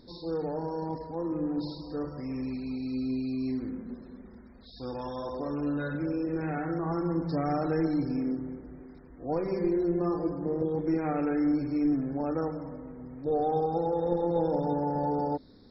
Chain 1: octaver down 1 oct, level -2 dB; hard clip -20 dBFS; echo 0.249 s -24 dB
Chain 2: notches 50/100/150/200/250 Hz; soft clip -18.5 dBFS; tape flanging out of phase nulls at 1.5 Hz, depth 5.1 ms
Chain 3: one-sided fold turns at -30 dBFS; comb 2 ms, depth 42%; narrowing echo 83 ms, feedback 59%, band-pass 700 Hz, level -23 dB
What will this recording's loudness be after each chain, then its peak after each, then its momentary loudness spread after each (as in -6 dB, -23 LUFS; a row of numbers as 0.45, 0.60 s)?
-30.0, -34.5, -33.5 LUFS; -19.5, -21.5, -16.0 dBFS; 12, 13, 13 LU